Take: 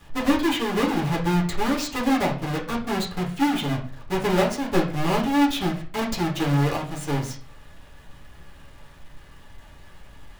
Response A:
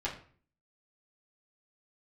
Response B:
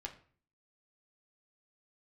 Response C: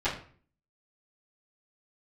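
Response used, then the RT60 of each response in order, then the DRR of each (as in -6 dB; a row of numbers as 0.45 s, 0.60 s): A; 0.45 s, 0.45 s, 0.45 s; -7.0 dB, 1.0 dB, -15.5 dB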